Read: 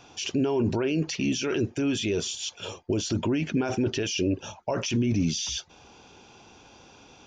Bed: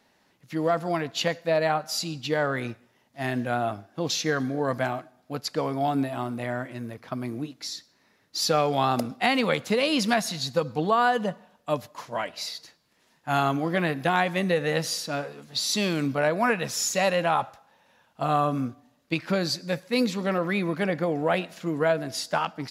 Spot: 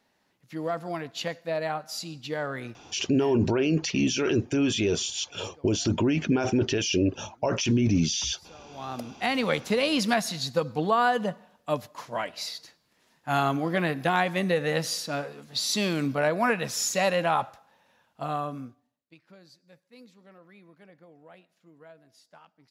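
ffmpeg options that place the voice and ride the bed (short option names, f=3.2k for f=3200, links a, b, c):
-filter_complex "[0:a]adelay=2750,volume=2dB[a];[1:a]volume=21.5dB,afade=t=out:st=2.84:d=0.56:silence=0.0749894,afade=t=in:st=8.67:d=0.88:silence=0.0421697,afade=t=out:st=17.58:d=1.47:silence=0.0473151[b];[a][b]amix=inputs=2:normalize=0"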